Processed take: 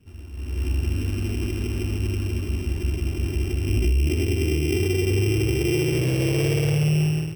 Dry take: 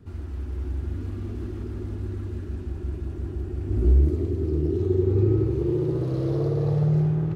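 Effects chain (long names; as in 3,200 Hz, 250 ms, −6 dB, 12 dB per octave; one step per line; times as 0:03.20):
samples sorted by size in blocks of 16 samples
brickwall limiter −20.5 dBFS, peak gain reduction 10.5 dB
automatic gain control gain up to 13 dB
level −7 dB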